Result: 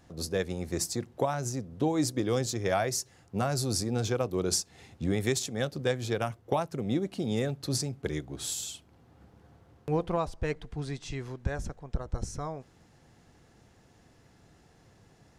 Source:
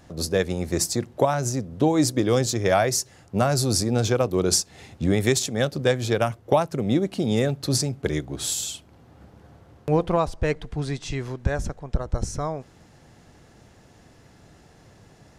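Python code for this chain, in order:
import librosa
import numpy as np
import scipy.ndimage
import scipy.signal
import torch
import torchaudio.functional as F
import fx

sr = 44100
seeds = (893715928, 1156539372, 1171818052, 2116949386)

y = fx.notch(x, sr, hz=600.0, q=15.0)
y = y * 10.0 ** (-7.5 / 20.0)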